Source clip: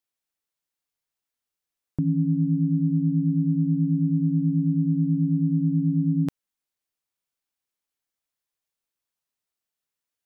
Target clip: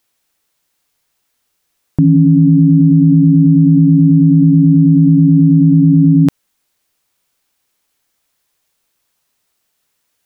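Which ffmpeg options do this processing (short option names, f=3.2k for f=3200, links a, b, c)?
-af "alimiter=level_in=21dB:limit=-1dB:release=50:level=0:latency=1,volume=-1dB"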